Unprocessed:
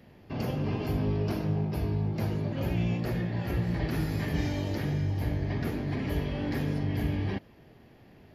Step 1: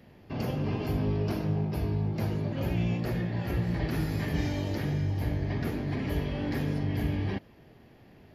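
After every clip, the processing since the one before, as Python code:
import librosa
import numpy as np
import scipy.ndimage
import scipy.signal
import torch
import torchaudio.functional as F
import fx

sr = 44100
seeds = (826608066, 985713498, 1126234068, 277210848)

y = x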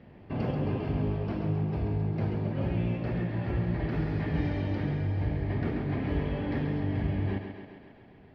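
y = fx.rider(x, sr, range_db=3, speed_s=0.5)
y = fx.air_absorb(y, sr, metres=320.0)
y = fx.echo_thinned(y, sr, ms=134, feedback_pct=68, hz=170.0, wet_db=-6.5)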